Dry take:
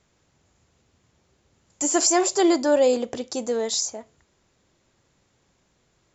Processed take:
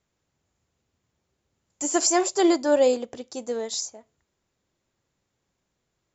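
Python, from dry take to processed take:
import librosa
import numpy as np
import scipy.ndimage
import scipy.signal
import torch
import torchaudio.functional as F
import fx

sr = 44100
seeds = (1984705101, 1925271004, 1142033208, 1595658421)

y = fx.upward_expand(x, sr, threshold_db=-38.0, expansion=1.5)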